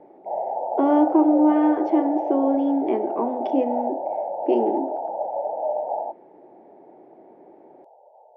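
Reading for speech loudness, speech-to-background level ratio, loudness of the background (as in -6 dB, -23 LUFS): -22.0 LUFS, 5.5 dB, -27.5 LUFS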